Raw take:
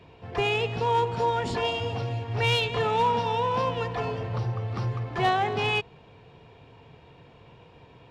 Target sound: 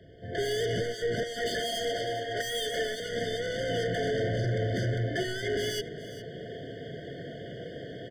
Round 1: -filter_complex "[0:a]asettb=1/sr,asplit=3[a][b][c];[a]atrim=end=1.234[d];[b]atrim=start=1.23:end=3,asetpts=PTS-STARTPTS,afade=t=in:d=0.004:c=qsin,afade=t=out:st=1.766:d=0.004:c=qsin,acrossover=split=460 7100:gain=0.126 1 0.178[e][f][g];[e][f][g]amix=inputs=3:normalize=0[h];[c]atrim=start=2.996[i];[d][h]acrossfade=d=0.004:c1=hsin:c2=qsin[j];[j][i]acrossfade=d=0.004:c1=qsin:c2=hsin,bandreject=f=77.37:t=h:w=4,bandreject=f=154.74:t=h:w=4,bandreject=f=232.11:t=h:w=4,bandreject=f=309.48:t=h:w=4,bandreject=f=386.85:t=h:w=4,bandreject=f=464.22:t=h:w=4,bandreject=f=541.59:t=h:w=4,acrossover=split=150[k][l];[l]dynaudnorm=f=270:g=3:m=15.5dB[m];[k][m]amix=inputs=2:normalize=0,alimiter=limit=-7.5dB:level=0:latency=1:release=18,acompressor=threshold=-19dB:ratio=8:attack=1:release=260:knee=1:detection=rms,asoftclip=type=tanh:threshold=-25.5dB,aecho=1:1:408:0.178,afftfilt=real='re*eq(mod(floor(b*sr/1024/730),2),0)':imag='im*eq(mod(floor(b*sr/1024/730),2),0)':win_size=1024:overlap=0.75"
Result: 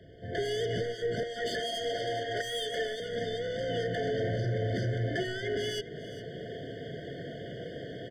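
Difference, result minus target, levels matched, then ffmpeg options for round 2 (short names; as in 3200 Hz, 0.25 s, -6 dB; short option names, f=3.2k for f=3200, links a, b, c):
compressor: peak gain reduction +6 dB
-filter_complex "[0:a]asettb=1/sr,asplit=3[a][b][c];[a]atrim=end=1.234[d];[b]atrim=start=1.23:end=3,asetpts=PTS-STARTPTS,afade=t=in:d=0.004:c=qsin,afade=t=out:st=1.766:d=0.004:c=qsin,acrossover=split=460 7100:gain=0.126 1 0.178[e][f][g];[e][f][g]amix=inputs=3:normalize=0[h];[c]atrim=start=2.996[i];[d][h]acrossfade=d=0.004:c1=hsin:c2=qsin[j];[j][i]acrossfade=d=0.004:c1=qsin:c2=hsin,bandreject=f=77.37:t=h:w=4,bandreject=f=154.74:t=h:w=4,bandreject=f=232.11:t=h:w=4,bandreject=f=309.48:t=h:w=4,bandreject=f=386.85:t=h:w=4,bandreject=f=464.22:t=h:w=4,bandreject=f=541.59:t=h:w=4,acrossover=split=150[k][l];[l]dynaudnorm=f=270:g=3:m=15.5dB[m];[k][m]amix=inputs=2:normalize=0,alimiter=limit=-7.5dB:level=0:latency=1:release=18,acompressor=threshold=-12dB:ratio=8:attack=1:release=260:knee=1:detection=rms,asoftclip=type=tanh:threshold=-25.5dB,aecho=1:1:408:0.178,afftfilt=real='re*eq(mod(floor(b*sr/1024/730),2),0)':imag='im*eq(mod(floor(b*sr/1024/730),2),0)':win_size=1024:overlap=0.75"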